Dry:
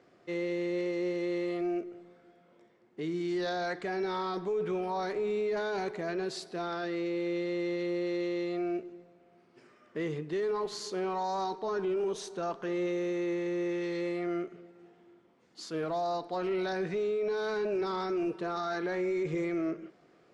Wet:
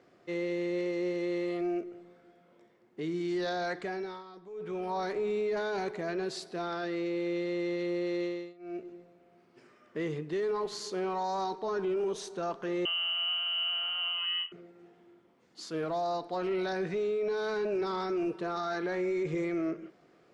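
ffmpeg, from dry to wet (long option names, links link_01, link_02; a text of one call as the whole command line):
ffmpeg -i in.wav -filter_complex "[0:a]asettb=1/sr,asplit=3[link_01][link_02][link_03];[link_01]atrim=end=12.854[link_04];[link_02]atrim=start=12.85:end=14.52,asetpts=PTS-STARTPTS,afade=type=in:duration=0.004:curve=qsin,afade=type=out:start_time=1.666:duration=0.004:curve=qsin,lowpass=frequency=2800:width_type=q:width=0.5098,lowpass=frequency=2800:width_type=q:width=0.6013,lowpass=frequency=2800:width_type=q:width=0.9,lowpass=frequency=2800:width_type=q:width=2.563,afreqshift=-3300[link_05];[link_03]atrim=start=14.516[link_06];[link_04][link_05]acrossfade=duration=0.004:curve1=hsin:curve2=qsin[link_07];[link_07][link_06]acrossfade=duration=0.004:curve1=qsin:curve2=hsin,asplit=5[link_08][link_09][link_10][link_11][link_12];[link_08]atrim=end=4.24,asetpts=PTS-STARTPTS,afade=type=out:start_time=3.8:duration=0.44:silence=0.16788[link_13];[link_09]atrim=start=4.24:end=4.49,asetpts=PTS-STARTPTS,volume=-15.5dB[link_14];[link_10]atrim=start=4.49:end=8.54,asetpts=PTS-STARTPTS,afade=type=in:duration=0.44:silence=0.16788,afade=type=out:start_time=3.75:duration=0.3:silence=0.0707946[link_15];[link_11]atrim=start=8.54:end=8.59,asetpts=PTS-STARTPTS,volume=-23dB[link_16];[link_12]atrim=start=8.59,asetpts=PTS-STARTPTS,afade=type=in:duration=0.3:silence=0.0707946[link_17];[link_13][link_14][link_15][link_16][link_17]concat=n=5:v=0:a=1" out.wav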